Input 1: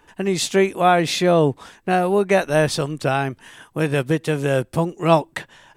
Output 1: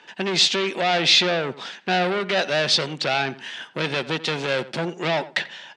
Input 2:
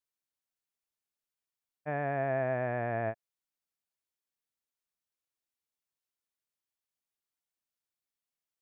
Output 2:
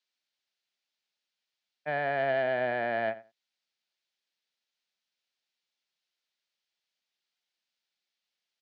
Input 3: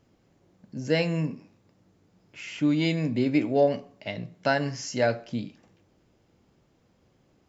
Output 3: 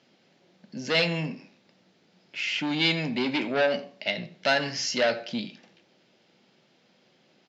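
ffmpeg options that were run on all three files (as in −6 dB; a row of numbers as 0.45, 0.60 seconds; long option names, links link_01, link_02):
-filter_complex "[0:a]equalizer=frequency=430:width=1.7:gain=5.5,alimiter=limit=-9dB:level=0:latency=1:release=52,asoftclip=type=tanh:threshold=-20dB,crystalizer=i=6.5:c=0,highpass=frequency=170:width=0.5412,highpass=frequency=170:width=1.3066,equalizer=frequency=300:width_type=q:width=4:gain=-7,equalizer=frequency=440:width_type=q:width=4:gain=-8,equalizer=frequency=1100:width_type=q:width=4:gain=-6,lowpass=frequency=4400:width=0.5412,lowpass=frequency=4400:width=1.3066,asplit=2[link_01][link_02];[link_02]adelay=88,lowpass=frequency=2300:poles=1,volume=-16dB,asplit=2[link_03][link_04];[link_04]adelay=88,lowpass=frequency=2300:poles=1,volume=0.17[link_05];[link_01][link_03][link_05]amix=inputs=3:normalize=0,volume=2dB"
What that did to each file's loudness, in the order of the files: −2.0, +3.0, +0.5 LU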